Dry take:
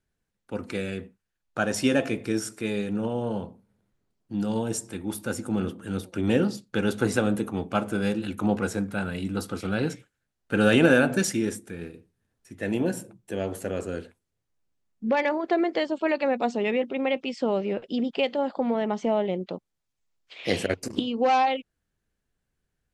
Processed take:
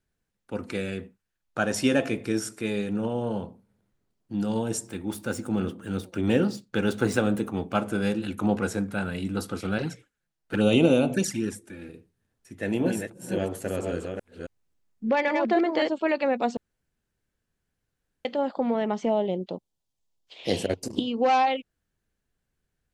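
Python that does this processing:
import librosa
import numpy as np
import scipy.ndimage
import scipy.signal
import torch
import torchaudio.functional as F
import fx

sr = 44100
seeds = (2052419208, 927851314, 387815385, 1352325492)

y = fx.median_filter(x, sr, points=3, at=(4.87, 7.82))
y = fx.env_flanger(y, sr, rest_ms=6.8, full_db=-18.0, at=(9.78, 11.89))
y = fx.reverse_delay(y, sr, ms=271, wet_db=-4.0, at=(12.57, 15.89))
y = fx.band_shelf(y, sr, hz=1700.0, db=-8.0, octaves=1.3, at=(19.09, 21.06))
y = fx.edit(y, sr, fx.room_tone_fill(start_s=16.57, length_s=1.68), tone=tone)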